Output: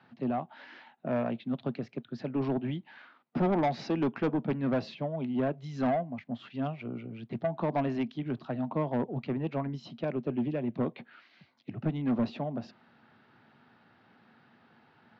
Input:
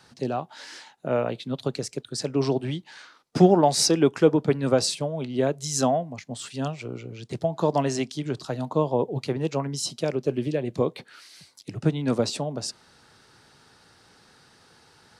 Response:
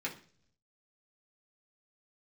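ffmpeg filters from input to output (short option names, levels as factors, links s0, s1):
-af "highpass=f=100:w=0.5412,highpass=f=100:w=1.3066,equalizer=f=230:t=q:w=4:g=10,equalizer=f=460:t=q:w=4:g=-5,equalizer=f=690:t=q:w=4:g=4,lowpass=f=2900:w=0.5412,lowpass=f=2900:w=1.3066,aresample=16000,asoftclip=type=tanh:threshold=0.133,aresample=44100,volume=0.562"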